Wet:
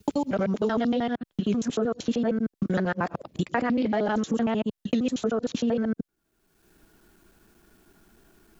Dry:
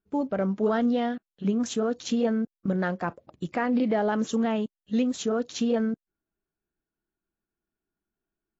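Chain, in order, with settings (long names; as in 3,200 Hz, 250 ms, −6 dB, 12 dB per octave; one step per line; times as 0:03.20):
reversed piece by piece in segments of 77 ms
multiband upward and downward compressor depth 100%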